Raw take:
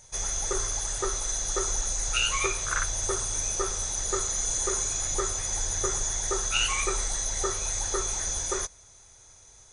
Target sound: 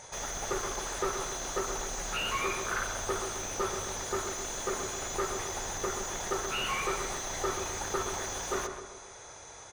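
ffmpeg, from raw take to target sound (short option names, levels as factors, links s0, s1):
-filter_complex "[0:a]asplit=2[s0][s1];[s1]highpass=f=720:p=1,volume=35.5,asoftclip=type=tanh:threshold=0.266[s2];[s0][s2]amix=inputs=2:normalize=0,lowpass=f=1000:p=1,volume=0.501,asplit=2[s3][s4];[s4]adelay=132,lowpass=f=2000:p=1,volume=0.473,asplit=2[s5][s6];[s6]adelay=132,lowpass=f=2000:p=1,volume=0.5,asplit=2[s7][s8];[s8]adelay=132,lowpass=f=2000:p=1,volume=0.5,asplit=2[s9][s10];[s10]adelay=132,lowpass=f=2000:p=1,volume=0.5,asplit=2[s11][s12];[s12]adelay=132,lowpass=f=2000:p=1,volume=0.5,asplit=2[s13][s14];[s14]adelay=132,lowpass=f=2000:p=1,volume=0.5[s15];[s3][s5][s7][s9][s11][s13][s15]amix=inputs=7:normalize=0,volume=0.473"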